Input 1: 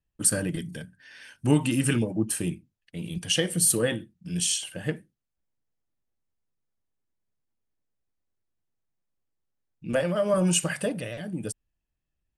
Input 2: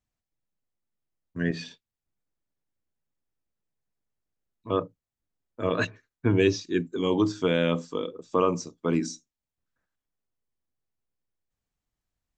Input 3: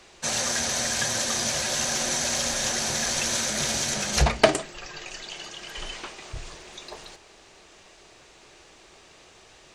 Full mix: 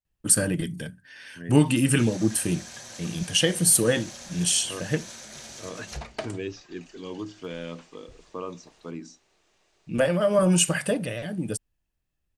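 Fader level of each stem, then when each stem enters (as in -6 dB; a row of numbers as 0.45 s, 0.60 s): +3.0 dB, -12.0 dB, -16.0 dB; 0.05 s, 0.00 s, 1.75 s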